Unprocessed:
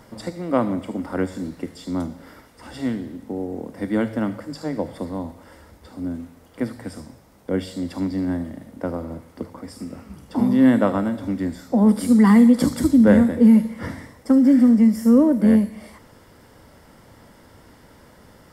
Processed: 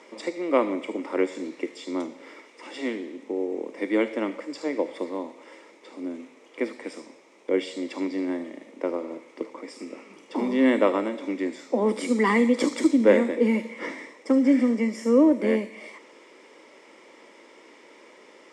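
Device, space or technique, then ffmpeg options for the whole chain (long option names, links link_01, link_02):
phone speaker on a table: -af "highpass=frequency=330:width=0.5412,highpass=frequency=330:width=1.3066,equalizer=frequency=360:width_type=q:width=4:gain=4,equalizer=frequency=730:width_type=q:width=4:gain=-8,equalizer=frequency=1500:width_type=q:width=4:gain=-10,equalizer=frequency=2300:width_type=q:width=4:gain=10,equalizer=frequency=4600:width_type=q:width=4:gain=-6,lowpass=frequency=7300:width=0.5412,lowpass=frequency=7300:width=1.3066,volume=2dB"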